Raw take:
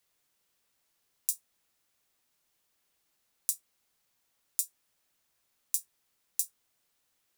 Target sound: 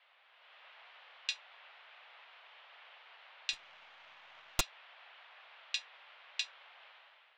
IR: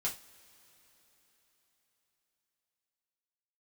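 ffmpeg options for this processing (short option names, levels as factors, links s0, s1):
-filter_complex "[0:a]highpass=f=530:t=q:w=0.5412,highpass=f=530:t=q:w=1.307,lowpass=f=3200:t=q:w=0.5176,lowpass=f=3200:t=q:w=0.7071,lowpass=f=3200:t=q:w=1.932,afreqshift=87,dynaudnorm=f=130:g=7:m=3.16,asettb=1/sr,asplit=3[s0][s1][s2];[s0]atrim=end=3.534[s3];[s1]atrim=start=3.53:end=4.61,asetpts=PTS-STARTPTS,afade=t=in:d=0.004:c=qsin,afade=t=out:st=1.076:d=0.004:c=qsin,aeval=exprs='0.0178*(cos(1*acos(clip(val(0)/0.0178,-1,1)))-cos(1*PI/2))+0.00891*(cos(6*acos(clip(val(0)/0.0178,-1,1)))-cos(6*PI/2))':c=same[s4];[s2]atrim=start=4.606[s5];[s3][s4]acrossfade=d=0.004:c1=hsin:c2=qsin[s6];[s6][s5]acrossfade=d=0.004:c1=qsin:c2=hsin,volume=7.5"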